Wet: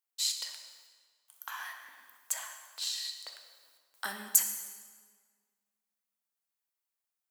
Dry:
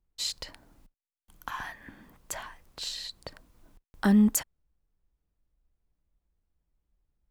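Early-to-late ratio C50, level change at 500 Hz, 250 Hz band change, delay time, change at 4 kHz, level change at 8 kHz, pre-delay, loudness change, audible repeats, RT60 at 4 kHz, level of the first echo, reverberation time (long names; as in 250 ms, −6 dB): 6.5 dB, −15.5 dB, −30.5 dB, no echo audible, +1.0 dB, +4.5 dB, 4 ms, −4.0 dB, no echo audible, 1.3 s, no echo audible, 1.7 s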